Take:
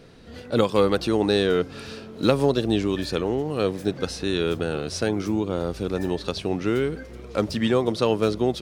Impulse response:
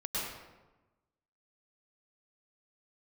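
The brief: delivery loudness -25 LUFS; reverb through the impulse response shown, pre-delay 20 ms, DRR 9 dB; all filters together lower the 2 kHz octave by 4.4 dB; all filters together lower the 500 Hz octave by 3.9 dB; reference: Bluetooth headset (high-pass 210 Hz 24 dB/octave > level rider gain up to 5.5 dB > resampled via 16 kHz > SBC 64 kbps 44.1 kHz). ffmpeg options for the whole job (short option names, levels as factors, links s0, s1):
-filter_complex "[0:a]equalizer=f=500:t=o:g=-4.5,equalizer=f=2000:t=o:g=-6,asplit=2[s0][s1];[1:a]atrim=start_sample=2205,adelay=20[s2];[s1][s2]afir=irnorm=-1:irlink=0,volume=0.2[s3];[s0][s3]amix=inputs=2:normalize=0,highpass=f=210:w=0.5412,highpass=f=210:w=1.3066,dynaudnorm=m=1.88,aresample=16000,aresample=44100,volume=1.26" -ar 44100 -c:a sbc -b:a 64k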